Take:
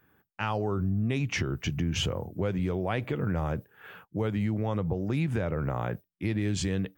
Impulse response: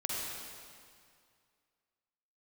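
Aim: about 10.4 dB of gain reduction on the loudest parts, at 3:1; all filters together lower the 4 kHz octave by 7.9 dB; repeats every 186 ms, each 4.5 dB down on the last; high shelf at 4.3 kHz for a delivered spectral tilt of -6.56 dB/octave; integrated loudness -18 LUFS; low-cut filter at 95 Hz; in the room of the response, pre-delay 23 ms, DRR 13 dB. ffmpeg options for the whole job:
-filter_complex "[0:a]highpass=95,equalizer=f=4000:t=o:g=-7.5,highshelf=f=4300:g=-8.5,acompressor=threshold=0.01:ratio=3,aecho=1:1:186|372|558|744|930|1116|1302|1488|1674:0.596|0.357|0.214|0.129|0.0772|0.0463|0.0278|0.0167|0.01,asplit=2[s0][s1];[1:a]atrim=start_sample=2205,adelay=23[s2];[s1][s2]afir=irnorm=-1:irlink=0,volume=0.133[s3];[s0][s3]amix=inputs=2:normalize=0,volume=11.9"

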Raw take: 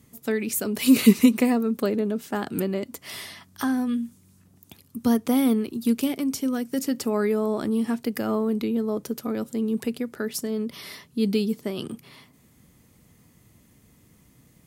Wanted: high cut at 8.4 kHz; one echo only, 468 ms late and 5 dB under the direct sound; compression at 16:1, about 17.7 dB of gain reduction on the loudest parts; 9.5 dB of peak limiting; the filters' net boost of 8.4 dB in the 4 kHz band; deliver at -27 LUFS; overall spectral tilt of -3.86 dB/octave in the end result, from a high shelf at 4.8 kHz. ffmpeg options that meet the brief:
-af "lowpass=8400,equalizer=f=4000:t=o:g=8.5,highshelf=f=4800:g=5,acompressor=threshold=0.0398:ratio=16,alimiter=limit=0.0631:level=0:latency=1,aecho=1:1:468:0.562,volume=2.11"

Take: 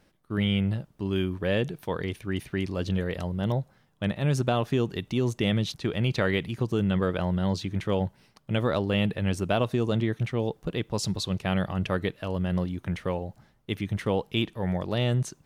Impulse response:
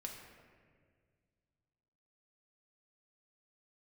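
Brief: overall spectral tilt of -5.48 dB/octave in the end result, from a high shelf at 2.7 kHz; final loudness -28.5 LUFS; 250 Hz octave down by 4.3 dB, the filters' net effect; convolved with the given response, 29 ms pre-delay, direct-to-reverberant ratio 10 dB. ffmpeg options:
-filter_complex "[0:a]equalizer=f=250:t=o:g=-6.5,highshelf=f=2700:g=3.5,asplit=2[s0][s1];[1:a]atrim=start_sample=2205,adelay=29[s2];[s1][s2]afir=irnorm=-1:irlink=0,volume=0.422[s3];[s0][s3]amix=inputs=2:normalize=0,volume=1.12"

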